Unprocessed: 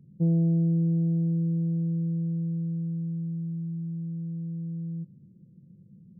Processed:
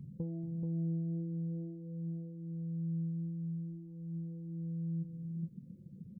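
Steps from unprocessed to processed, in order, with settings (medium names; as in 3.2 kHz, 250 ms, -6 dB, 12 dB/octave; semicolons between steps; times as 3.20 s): reverb removal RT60 1.1 s; compression 6:1, threshold -41 dBFS, peak gain reduction 18.5 dB; flange 0.48 Hz, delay 0.9 ms, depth 5.9 ms, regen +29%; on a send: delay 431 ms -4.5 dB; on the sum: trim +9.5 dB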